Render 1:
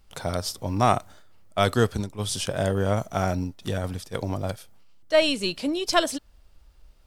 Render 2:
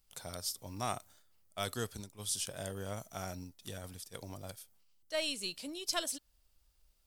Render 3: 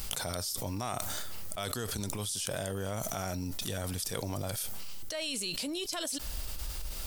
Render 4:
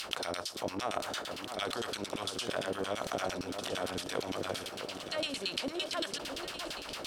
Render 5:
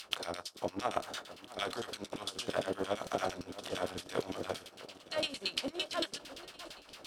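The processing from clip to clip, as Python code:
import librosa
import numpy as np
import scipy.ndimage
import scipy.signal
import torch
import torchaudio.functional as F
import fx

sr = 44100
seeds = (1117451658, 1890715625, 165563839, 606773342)

y1 = scipy.signal.lfilter([1.0, -0.8], [1.0], x)
y1 = F.gain(torch.from_numpy(y1), -4.0).numpy()
y2 = fx.env_flatten(y1, sr, amount_pct=100)
y2 = F.gain(torch.from_numpy(y2), -4.5).numpy()
y3 = fx.bin_compress(y2, sr, power=0.6)
y3 = fx.filter_lfo_bandpass(y3, sr, shape='saw_down', hz=8.8, low_hz=280.0, high_hz=4100.0, q=1.4)
y3 = fx.echo_alternate(y3, sr, ms=656, hz=1500.0, feedback_pct=65, wet_db=-8.0)
y3 = F.gain(torch.from_numpy(y3), 3.5).numpy()
y4 = fx.doubler(y3, sr, ms=24.0, db=-11)
y4 = fx.upward_expand(y4, sr, threshold_db=-47.0, expansion=2.5)
y4 = F.gain(torch.from_numpy(y4), 4.0).numpy()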